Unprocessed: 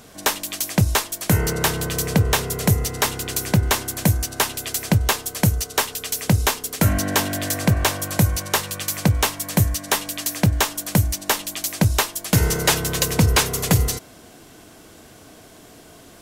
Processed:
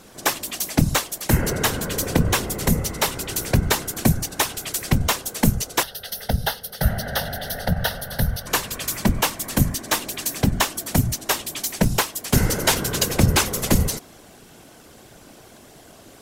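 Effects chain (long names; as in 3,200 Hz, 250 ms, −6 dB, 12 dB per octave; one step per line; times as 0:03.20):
random phases in short frames
0:05.83–0:08.47: phaser with its sweep stopped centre 1,600 Hz, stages 8
level −1 dB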